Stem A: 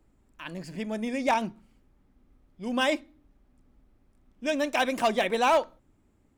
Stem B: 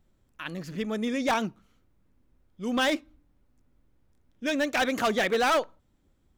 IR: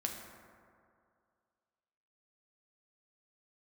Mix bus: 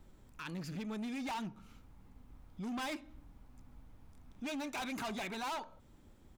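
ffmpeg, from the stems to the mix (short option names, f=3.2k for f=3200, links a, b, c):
-filter_complex "[0:a]equalizer=f=920:t=o:w=0.56:g=6.5,dynaudnorm=f=410:g=7:m=4dB,volume=-9.5dB[a];[1:a]acompressor=threshold=-31dB:ratio=6,adelay=1,volume=-0.5dB[b];[a][b]amix=inputs=2:normalize=0,volume=32.5dB,asoftclip=hard,volume=-32.5dB,acontrast=71,alimiter=level_in=13dB:limit=-24dB:level=0:latency=1:release=241,volume=-13dB"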